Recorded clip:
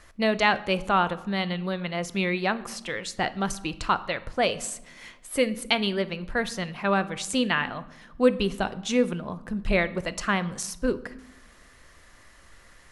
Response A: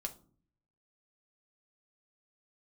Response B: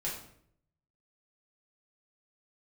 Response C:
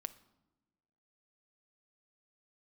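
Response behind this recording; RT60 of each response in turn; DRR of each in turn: C; 0.45 s, 0.65 s, non-exponential decay; 3.0, −6.0, 13.0 decibels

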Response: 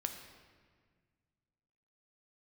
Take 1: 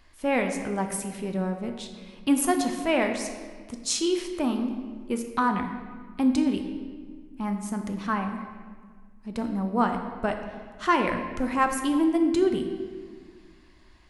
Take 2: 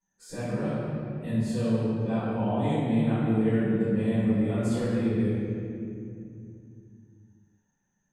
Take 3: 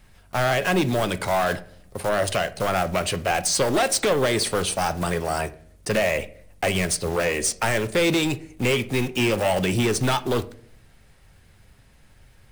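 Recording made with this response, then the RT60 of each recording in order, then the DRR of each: 1; 1.7, 2.5, 0.55 seconds; 4.5, −17.0, 10.5 decibels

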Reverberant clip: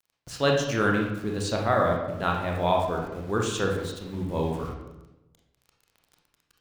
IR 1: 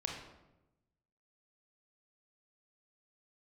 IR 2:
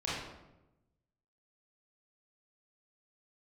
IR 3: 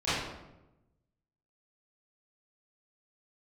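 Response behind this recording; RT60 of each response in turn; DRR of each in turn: 1; 0.95, 0.95, 0.95 seconds; 0.0, −8.5, −16.0 decibels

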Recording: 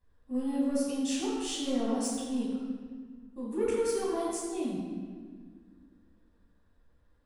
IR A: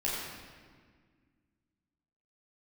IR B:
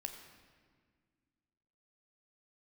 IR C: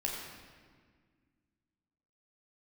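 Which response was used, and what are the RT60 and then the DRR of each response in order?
A; 1.7, 1.7, 1.7 seconds; −7.5, 4.5, −2.5 decibels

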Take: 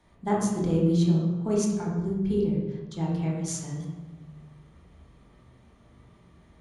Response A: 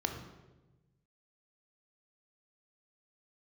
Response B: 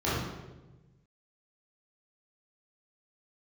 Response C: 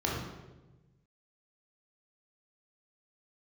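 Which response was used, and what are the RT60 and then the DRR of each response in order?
C; 1.1, 1.1, 1.1 seconds; 4.0, −10.5, −4.0 decibels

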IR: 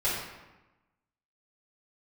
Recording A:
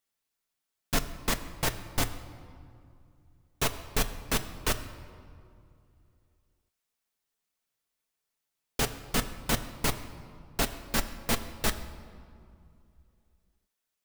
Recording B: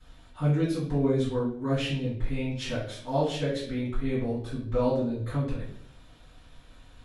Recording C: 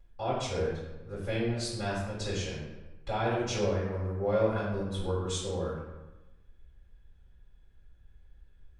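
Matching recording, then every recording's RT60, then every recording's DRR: C; 2.4, 0.65, 1.1 seconds; 6.0, −13.5, −11.5 decibels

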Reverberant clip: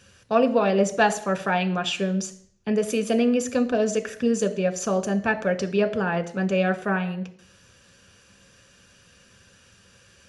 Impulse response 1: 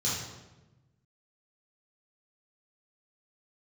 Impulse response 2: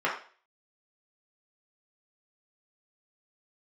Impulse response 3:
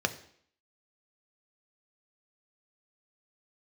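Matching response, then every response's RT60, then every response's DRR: 3; 1.1, 0.40, 0.60 seconds; −8.5, −5.0, 7.0 decibels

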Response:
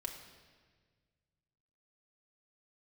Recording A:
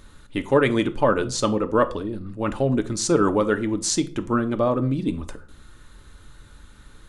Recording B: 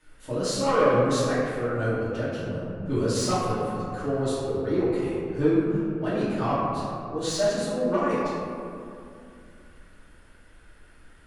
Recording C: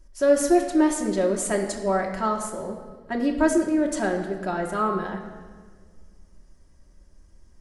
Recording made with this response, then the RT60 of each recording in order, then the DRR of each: C; 0.45, 2.6, 1.6 seconds; 8.0, −11.0, 0.0 decibels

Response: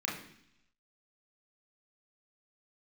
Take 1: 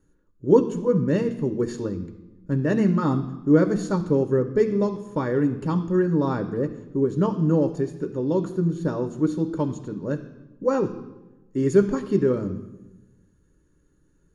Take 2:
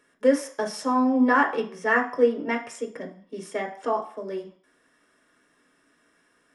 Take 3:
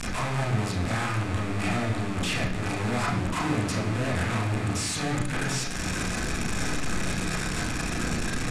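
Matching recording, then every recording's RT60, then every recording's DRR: 3; 1.1, 0.50, 0.70 seconds; 6.5, 2.0, −3.0 decibels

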